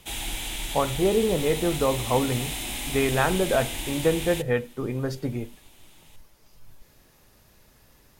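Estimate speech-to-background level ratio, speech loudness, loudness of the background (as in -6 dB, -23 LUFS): 5.5 dB, -26.0 LUFS, -31.5 LUFS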